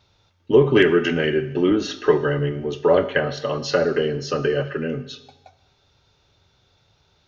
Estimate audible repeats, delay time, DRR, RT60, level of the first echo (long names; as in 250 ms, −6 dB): no echo audible, no echo audible, 11.5 dB, 1.0 s, no echo audible